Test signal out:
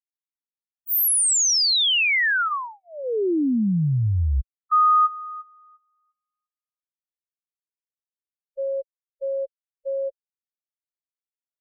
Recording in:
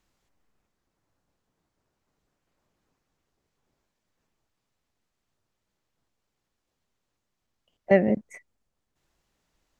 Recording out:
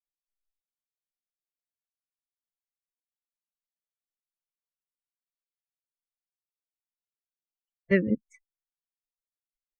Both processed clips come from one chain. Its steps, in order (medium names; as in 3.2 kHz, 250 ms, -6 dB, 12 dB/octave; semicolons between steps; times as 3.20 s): expander on every frequency bin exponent 3; level-controlled noise filter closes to 2.6 kHz, open at -20.5 dBFS; Butterworth band-stop 750 Hz, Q 0.95; trim +3 dB